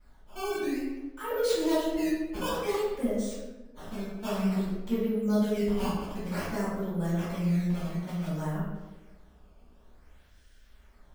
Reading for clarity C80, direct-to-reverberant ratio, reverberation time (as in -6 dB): 2.5 dB, -15.0 dB, 1.2 s